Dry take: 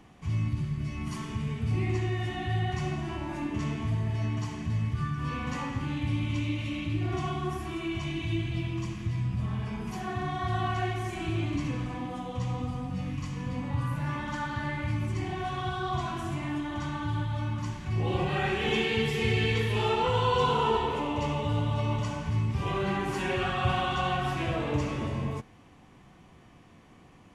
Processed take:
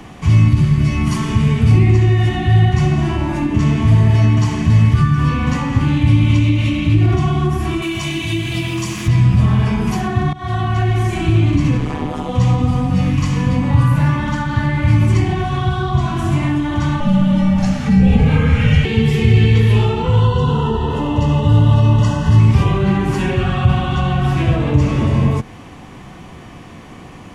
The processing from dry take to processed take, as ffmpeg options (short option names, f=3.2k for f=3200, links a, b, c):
-filter_complex "[0:a]asettb=1/sr,asplit=3[a][b][c];[a]atrim=end=7.824[d];[b]atrim=start=7.82:end=9.08,asetpts=PTS-STARTPTS,afade=t=in:d=0.004:c=qsin,afade=t=out:st=1.256:d=0.004:c=qsin,aemphasis=mode=production:type=bsi[e];[c]atrim=start=9.076[f];[d][e]acrossfade=d=0.004:c1=hsin:c2=qsin[g];[g][f]acrossfade=d=0.004:c1=qsin:c2=hsin,asplit=3[h][i][j];[h]afade=t=out:st=11.77:d=0.02[k];[i]tremolo=f=150:d=0.919,afade=t=in:st=11.77:d=0.02,afade=t=out:st=12.28:d=0.02[l];[j]afade=t=in:st=12.28:d=0.02[m];[k][l][m]amix=inputs=3:normalize=0,asettb=1/sr,asplit=3[n][o][p];[n]atrim=end=17.004[q];[o]atrim=start=17:end=18.85,asetpts=PTS-STARTPTS,afade=t=in:d=0.004:c=qsin,afade=t=out:st=1.846:d=0.004:c=qsin,afreqshift=-300[r];[p]atrim=start=18.846[s];[q][r]acrossfade=d=0.004:c1=hsin:c2=qsin[t];[t][s]acrossfade=d=0.004:c1=qsin:c2=hsin,asettb=1/sr,asplit=3[u][v][w];[u]atrim=end=20.204[x];[v]atrim=start=20.2:end=22.4,asetpts=PTS-STARTPTS,afade=t=in:d=0.004:c=qsin,afade=t=out:st=2.196:d=0.004:c=qsin,asuperstop=centerf=2300:order=12:qfactor=5.1[y];[w]atrim=start=22.396[z];[x][y]acrossfade=d=0.004:c1=hsin:c2=qsin[aa];[aa][z]acrossfade=d=0.004:c1=qsin:c2=hsin,asplit=2[ab][ac];[ab]atrim=end=10.33,asetpts=PTS-STARTPTS,afade=t=out:st=10.326:d=0.004:c=hsin:silence=0.0944061[ad];[ac]atrim=start=10.33,asetpts=PTS-STARTPTS,afade=t=in:d=0.57:silence=0.0944061[ae];[ad][ae]concat=n=2:v=0:a=1,acrossover=split=250[af][ag];[ag]acompressor=threshold=-40dB:ratio=10[ah];[af][ah]amix=inputs=2:normalize=0,alimiter=level_in=19.5dB:limit=-1dB:release=50:level=0:latency=1,volume=-1dB"